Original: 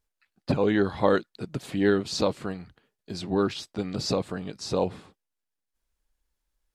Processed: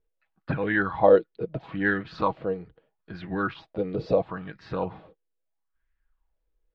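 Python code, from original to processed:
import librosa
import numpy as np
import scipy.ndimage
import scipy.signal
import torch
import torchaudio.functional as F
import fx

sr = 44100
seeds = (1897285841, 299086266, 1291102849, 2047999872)

y = scipy.signal.sosfilt(scipy.signal.butter(4, 3400.0, 'lowpass', fs=sr, output='sos'), x)
y = fx.low_shelf(y, sr, hz=120.0, db=11.0)
y = y + 0.36 * np.pad(y, (int(6.2 * sr / 1000.0), 0))[:len(y)]
y = fx.bell_lfo(y, sr, hz=0.76, low_hz=420.0, high_hz=1800.0, db=18)
y = F.gain(torch.from_numpy(y), -7.5).numpy()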